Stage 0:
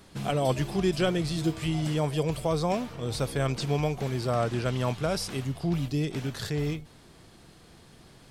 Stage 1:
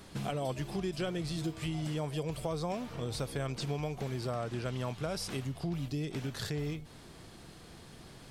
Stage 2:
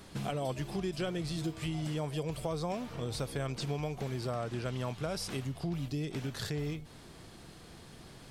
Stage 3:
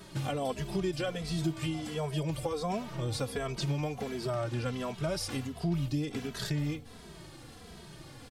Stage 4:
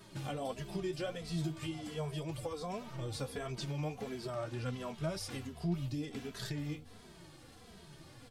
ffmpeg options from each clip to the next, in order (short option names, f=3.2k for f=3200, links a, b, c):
-af "acompressor=threshold=-37dB:ratio=3,volume=1.5dB"
-af anull
-filter_complex "[0:a]asplit=2[a][b];[b]adelay=2.7,afreqshift=-1.4[c];[a][c]amix=inputs=2:normalize=1,volume=5.5dB"
-af "flanger=delay=7.6:depth=6.6:regen=43:speed=1.7:shape=triangular,volume=-2dB"